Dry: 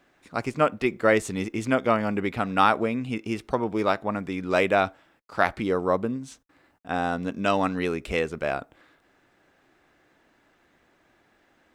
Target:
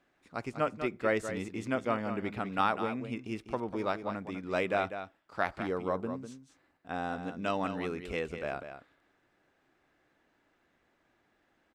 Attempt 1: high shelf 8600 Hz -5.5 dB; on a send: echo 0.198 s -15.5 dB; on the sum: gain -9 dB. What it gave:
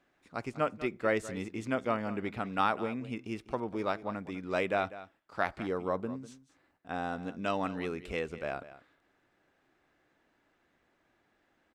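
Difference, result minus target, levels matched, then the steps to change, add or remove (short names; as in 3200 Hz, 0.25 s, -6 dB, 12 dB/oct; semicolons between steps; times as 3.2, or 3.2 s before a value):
echo-to-direct -6 dB
change: echo 0.198 s -9.5 dB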